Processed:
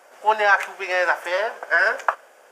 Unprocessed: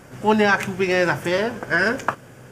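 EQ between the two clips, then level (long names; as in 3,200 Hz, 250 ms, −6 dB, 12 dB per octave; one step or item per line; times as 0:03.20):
four-pole ladder high-pass 520 Hz, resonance 40%
dynamic equaliser 1,400 Hz, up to +6 dB, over −39 dBFS, Q 0.88
+3.5 dB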